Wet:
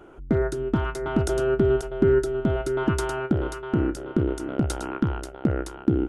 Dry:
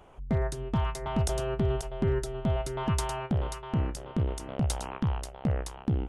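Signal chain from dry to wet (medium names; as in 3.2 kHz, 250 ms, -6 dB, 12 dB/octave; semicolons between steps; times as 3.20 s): small resonant body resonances 330/1400 Hz, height 17 dB, ringing for 30 ms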